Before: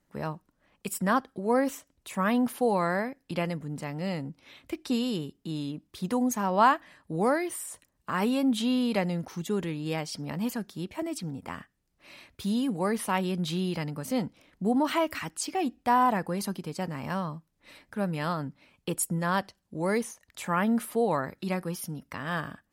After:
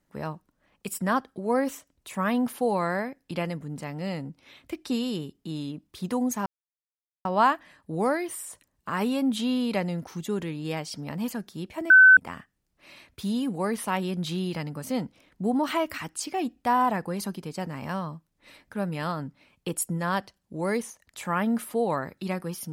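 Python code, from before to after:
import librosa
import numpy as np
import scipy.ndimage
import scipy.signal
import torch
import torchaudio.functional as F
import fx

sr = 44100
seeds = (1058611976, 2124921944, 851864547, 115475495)

y = fx.edit(x, sr, fx.insert_silence(at_s=6.46, length_s=0.79),
    fx.bleep(start_s=11.11, length_s=0.27, hz=1520.0, db=-9.5), tone=tone)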